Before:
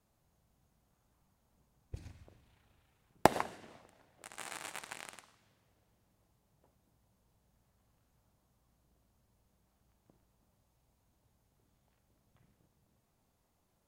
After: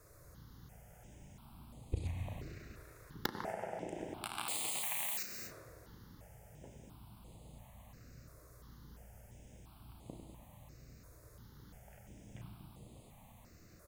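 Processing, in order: 4.48–5.23 switching spikes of -32.5 dBFS; doubler 34 ms -8 dB; on a send: tape echo 97 ms, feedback 78%, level -7 dB, low-pass 1100 Hz; on the sum: non-linear reverb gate 0.27 s flat, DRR 11 dB; compressor 5:1, threshold -52 dBFS, peak gain reduction 30.5 dB; step phaser 2.9 Hz 830–5600 Hz; gain +18 dB

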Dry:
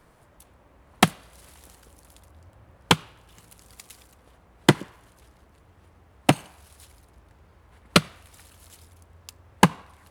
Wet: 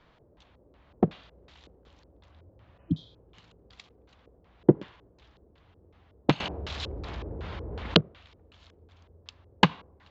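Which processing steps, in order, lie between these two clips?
LFO low-pass square 2.7 Hz 440–3600 Hz; 2.82–3.13 spectral repair 330–3100 Hz both; downsampling 16000 Hz; 6.4–8.01 fast leveller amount 50%; gain -4.5 dB

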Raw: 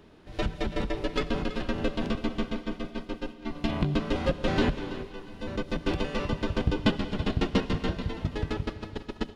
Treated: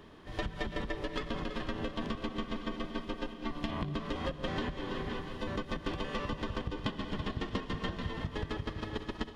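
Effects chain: regenerating reverse delay 0.257 s, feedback 52%, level -14 dB; compressor 10:1, threshold -32 dBFS, peak gain reduction 14.5 dB; harmoniser +4 st -17 dB; small resonant body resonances 1100/1800/3200 Hz, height 9 dB, ringing for 20 ms

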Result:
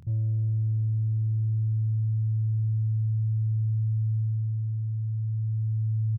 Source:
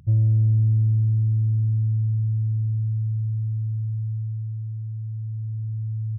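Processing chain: limiter -23.5 dBFS, peak gain reduction 10 dB; doubler 25 ms -4 dB

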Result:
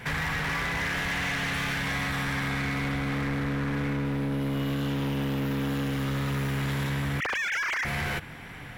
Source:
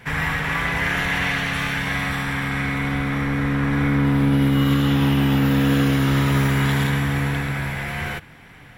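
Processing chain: 7.2–7.85 sine-wave speech; compressor 6:1, threshold -27 dBFS, peak gain reduction 12 dB; overloaded stage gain 29 dB; gain +3 dB

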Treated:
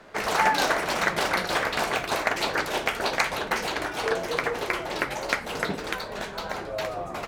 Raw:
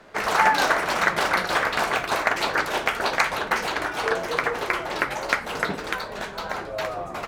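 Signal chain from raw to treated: dynamic EQ 1300 Hz, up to -5 dB, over -35 dBFS, Q 0.96

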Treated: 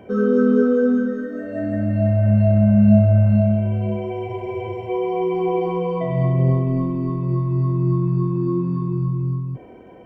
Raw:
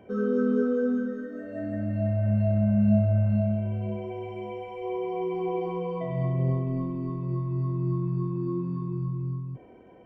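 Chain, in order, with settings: spectral freeze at 4.3, 0.58 s; gain +8.5 dB

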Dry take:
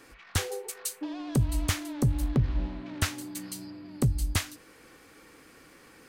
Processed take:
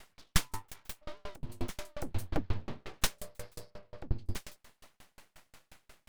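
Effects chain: 0.98–1.5 compressor 6:1, threshold -31 dBFS, peak gain reduction 11 dB; 2.11–3.07 comb 5.2 ms, depth 96%; 3.78–4.26 LPF 4000 Hz 24 dB/oct; full-wave rectifier; dB-ramp tremolo decaying 5.6 Hz, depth 37 dB; gain +5 dB

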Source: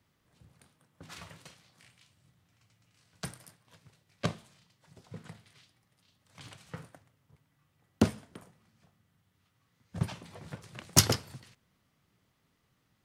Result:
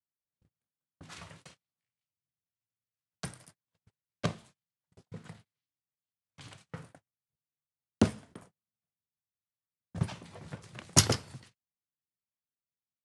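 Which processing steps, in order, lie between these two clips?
Chebyshev low-pass 11000 Hz, order 5; gate -54 dBFS, range -34 dB

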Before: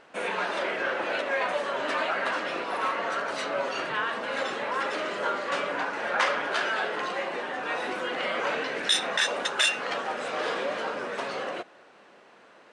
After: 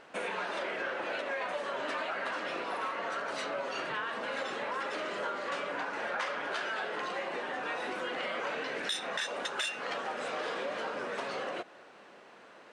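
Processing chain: compressor 3:1, threshold -34 dBFS, peak gain reduction 11.5 dB; soft clip -20.5 dBFS, distortion -31 dB

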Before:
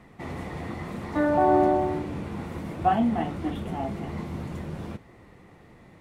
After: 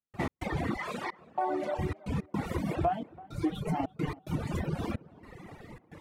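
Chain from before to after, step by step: reverb removal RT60 1.2 s; 0.77–1.79 weighting filter A; reverb removal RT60 0.8 s; 2.87–4.38 comb 6.6 ms, depth 74%; compressor 8:1, threshold -36 dBFS, peak gain reduction 21.5 dB; step gate ".x.xxxxx..xxxx" 109 bpm -60 dB; tape echo 0.332 s, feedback 59%, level -19 dB, low-pass 1500 Hz; record warp 78 rpm, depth 100 cents; gain +9 dB

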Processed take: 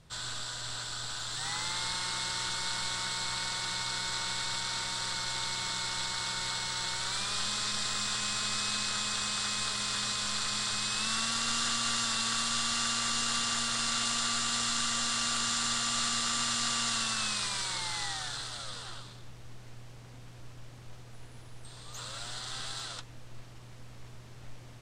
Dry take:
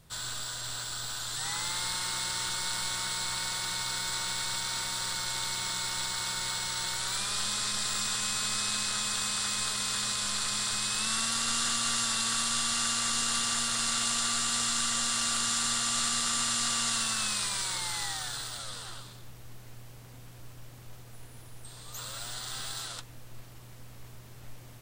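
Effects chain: LPF 7100 Hz 12 dB/oct

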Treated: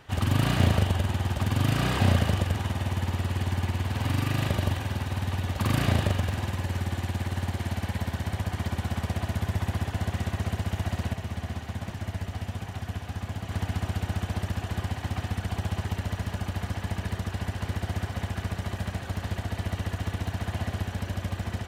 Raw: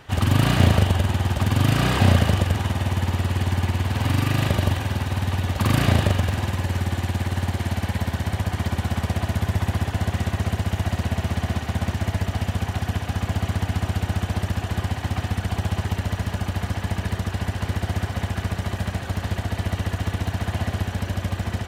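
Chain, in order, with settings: 11.13–13.51 flange 1.3 Hz, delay 5.9 ms, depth 7.2 ms, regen -50%; gain -5.5 dB

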